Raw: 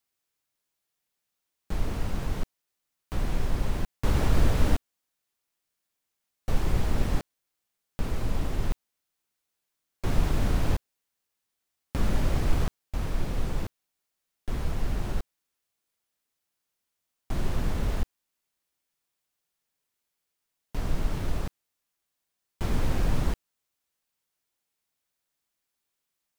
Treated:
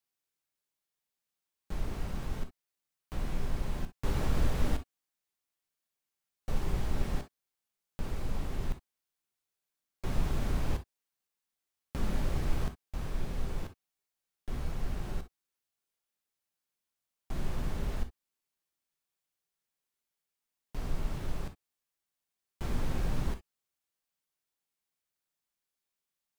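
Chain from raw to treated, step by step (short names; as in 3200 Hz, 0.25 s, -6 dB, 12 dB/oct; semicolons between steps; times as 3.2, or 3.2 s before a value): non-linear reverb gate 80 ms flat, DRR 7.5 dB; gain -7 dB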